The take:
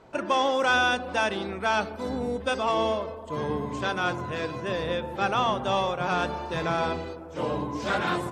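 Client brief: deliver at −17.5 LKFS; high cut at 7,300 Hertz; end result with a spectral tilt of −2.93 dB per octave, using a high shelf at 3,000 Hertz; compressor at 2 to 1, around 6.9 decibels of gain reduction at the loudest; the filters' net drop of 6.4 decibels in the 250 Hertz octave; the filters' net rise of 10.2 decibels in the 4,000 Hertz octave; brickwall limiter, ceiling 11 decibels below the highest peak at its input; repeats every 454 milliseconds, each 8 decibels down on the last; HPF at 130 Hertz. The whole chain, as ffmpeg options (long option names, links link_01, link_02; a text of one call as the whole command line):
ffmpeg -i in.wav -af "highpass=130,lowpass=7300,equalizer=frequency=250:width_type=o:gain=-8.5,highshelf=frequency=3000:gain=9,equalizer=frequency=4000:width_type=o:gain=6.5,acompressor=threshold=-27dB:ratio=2,alimiter=limit=-22dB:level=0:latency=1,aecho=1:1:454|908|1362|1816|2270:0.398|0.159|0.0637|0.0255|0.0102,volume=14dB" out.wav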